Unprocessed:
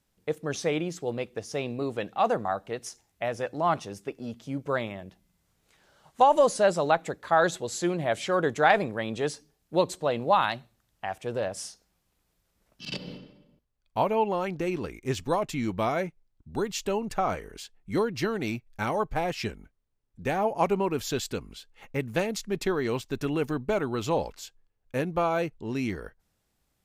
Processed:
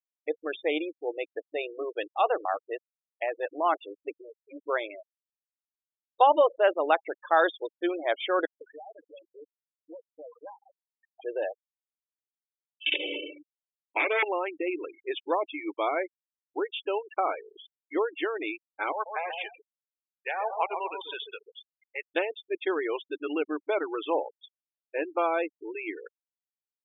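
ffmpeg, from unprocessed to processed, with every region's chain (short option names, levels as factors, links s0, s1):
-filter_complex "[0:a]asettb=1/sr,asplit=3[s0][s1][s2];[s0]atrim=end=8.454[s3];[s1]atrim=start=8.45:end=11.21,asetpts=PTS-STARTPTS,afade=t=in:d=0.004:c=qsin,afade=t=out:st=2.756:d=0.004:c=qsin,acompressor=threshold=0.02:ratio=10:attack=3.2:release=140:knee=1:detection=peak,highpass=120,equalizer=f=190:t=q:w=4:g=-8,equalizer=f=390:t=q:w=4:g=-9,equalizer=f=660:t=q:w=4:g=-3,equalizer=f=1300:t=q:w=4:g=-5,equalizer=f=2000:t=q:w=4:g=-7,lowpass=f=3100:w=0.5412,lowpass=f=3100:w=1.3066,acrossover=split=190|1100[s4][s5][s6];[s5]adelay=160[s7];[s4]adelay=470[s8];[s8][s7][s6]amix=inputs=3:normalize=0,atrim=end_sample=121716[s9];[s2]atrim=start=11.206[s10];[s3][s9]acrossfade=d=0.004:c1=hsin:c2=qsin[s11];[s11][s10]acrossfade=d=0.004:c1=qsin:c2=hsin,asettb=1/sr,asplit=3[s12][s13][s14];[s12]atrim=end=12.864[s15];[s13]atrim=start=12.86:end=14.23,asetpts=PTS-STARTPTS,afade=t=in:d=0.004:c=qsin,afade=t=out:st=1.366:d=0.004:c=qsin,aeval=exprs='0.266*sin(PI/2*3.98*val(0)/0.266)':c=same,equalizer=f=2300:t=o:w=0.32:g=10,acompressor=threshold=0.0562:ratio=5:attack=3.2:release=140:knee=1:detection=peak[s16];[s14]atrim=start=14.226[s17];[s15][s16]acrossfade=d=0.004:c1=hsin:c2=qsin[s18];[s18][s17]acrossfade=d=0.004:c1=qsin:c2=hsin,asettb=1/sr,asplit=3[s19][s20][s21];[s19]atrim=end=18.924[s22];[s20]atrim=start=18.92:end=22.02,asetpts=PTS-STARTPTS,afade=t=in:d=0.004:c=qsin,afade=t=out:st=3.096:d=0.004:c=qsin,highpass=780,lowpass=6700,asplit=2[s23][s24];[s24]adelay=135,lowpass=f=1300:p=1,volume=0.562,asplit=2[s25][s26];[s26]adelay=135,lowpass=f=1300:p=1,volume=0.42,asplit=2[s27][s28];[s28]adelay=135,lowpass=f=1300:p=1,volume=0.42,asplit=2[s29][s30];[s30]adelay=135,lowpass=f=1300:p=1,volume=0.42,asplit=2[s31][s32];[s32]adelay=135,lowpass=f=1300:p=1,volume=0.42[s33];[s23][s25][s27][s29][s31][s33]amix=inputs=6:normalize=0,atrim=end_sample=136710[s34];[s21]atrim=start=22.016[s35];[s22][s34]acrossfade=d=0.004:c1=hsin:c2=qsin[s36];[s36][s35]acrossfade=d=0.004:c1=qsin:c2=hsin,afftfilt=real='re*between(b*sr/4096,280,3700)':imag='im*between(b*sr/4096,280,3700)':win_size=4096:overlap=0.75,aemphasis=mode=production:type=75fm,afftfilt=real='re*gte(hypot(re,im),0.0316)':imag='im*gte(hypot(re,im),0.0316)':win_size=1024:overlap=0.75"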